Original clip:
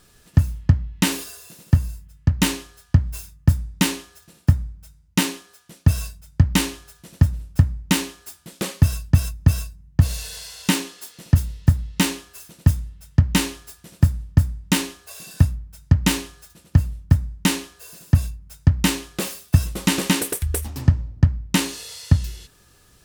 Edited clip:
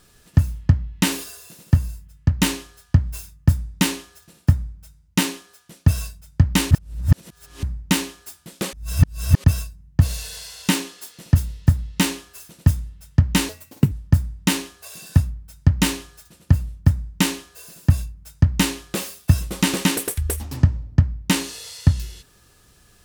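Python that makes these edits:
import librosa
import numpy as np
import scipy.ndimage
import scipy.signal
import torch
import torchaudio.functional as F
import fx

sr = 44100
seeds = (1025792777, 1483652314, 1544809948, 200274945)

y = fx.edit(x, sr, fx.reverse_span(start_s=6.71, length_s=0.92),
    fx.reverse_span(start_s=8.73, length_s=0.71),
    fx.speed_span(start_s=13.49, length_s=0.67, speed=1.58), tone=tone)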